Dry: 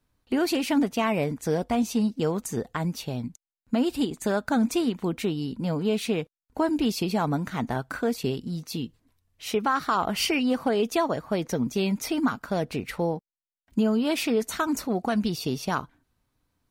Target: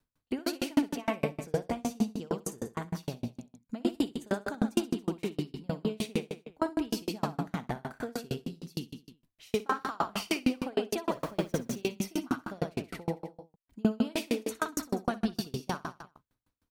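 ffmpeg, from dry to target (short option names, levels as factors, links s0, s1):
-filter_complex "[0:a]asettb=1/sr,asplit=3[s0][s1][s2];[s0]atrim=end=11.094[s3];[s1]atrim=start=11.09:end=11.76,asetpts=PTS-STARTPTS,afade=t=in:d=0.004:c=qsin,afade=t=out:st=0.666:d=0.004:c=qsin,aeval=exprs='val(0)+0.5*0.02*sgn(val(0))':c=same[s4];[s2]atrim=start=11.756[s5];[s3][s4]acrossfade=d=0.004:c1=hsin:c2=qsin[s6];[s6][s5]acrossfade=d=0.004:c1=qsin:c2=hsin,aecho=1:1:60|126|198.6|278.5|366.3:0.631|0.398|0.251|0.158|0.1,aeval=exprs='val(0)*pow(10,-36*if(lt(mod(6.5*n/s,1),2*abs(6.5)/1000),1-mod(6.5*n/s,1)/(2*abs(6.5)/1000),(mod(6.5*n/s,1)-2*abs(6.5)/1000)/(1-2*abs(6.5)/1000))/20)':c=same"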